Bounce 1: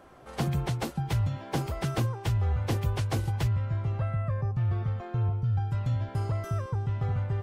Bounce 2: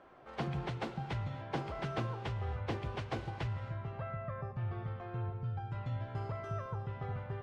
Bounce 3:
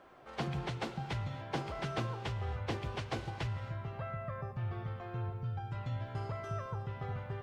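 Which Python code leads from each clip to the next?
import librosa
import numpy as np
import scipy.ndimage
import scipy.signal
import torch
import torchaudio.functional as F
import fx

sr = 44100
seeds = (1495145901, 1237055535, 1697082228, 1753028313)

y1 = scipy.signal.sosfilt(scipy.signal.butter(2, 3200.0, 'lowpass', fs=sr, output='sos'), x)
y1 = fx.low_shelf(y1, sr, hz=210.0, db=-9.0)
y1 = fx.rev_gated(y1, sr, seeds[0], gate_ms=300, shape='flat', drr_db=10.0)
y1 = y1 * 10.0 ** (-4.0 / 20.0)
y2 = fx.high_shelf(y1, sr, hz=3800.0, db=8.5)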